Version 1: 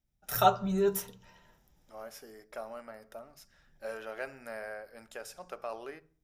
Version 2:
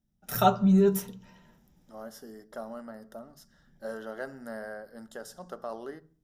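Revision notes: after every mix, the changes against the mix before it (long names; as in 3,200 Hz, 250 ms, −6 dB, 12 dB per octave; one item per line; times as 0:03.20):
second voice: add Butterworth band-reject 2,400 Hz, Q 2.4
master: add parametric band 210 Hz +12 dB 1.2 octaves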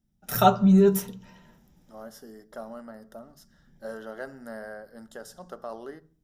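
first voice +3.5 dB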